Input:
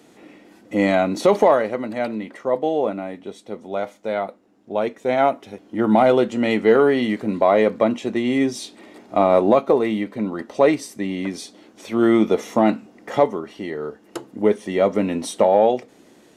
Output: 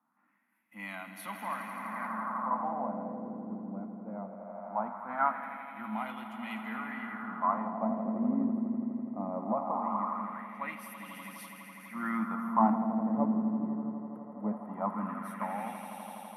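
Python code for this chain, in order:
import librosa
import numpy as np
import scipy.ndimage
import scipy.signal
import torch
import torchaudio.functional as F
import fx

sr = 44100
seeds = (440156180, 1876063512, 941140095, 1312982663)

p1 = x + fx.echo_swell(x, sr, ms=83, loudest=5, wet_db=-9.5, dry=0)
p2 = fx.wah_lfo(p1, sr, hz=0.2, low_hz=380.0, high_hz=3000.0, q=2.3)
p3 = fx.rider(p2, sr, range_db=10, speed_s=2.0)
p4 = fx.curve_eq(p3, sr, hz=(130.0, 230.0, 410.0, 1000.0, 3800.0, 7900.0, 11000.0), db=(0, 8, -26, 0, -24, -17, 15))
p5 = fx.band_widen(p4, sr, depth_pct=40)
y = p5 * 10.0 ** (-2.0 / 20.0)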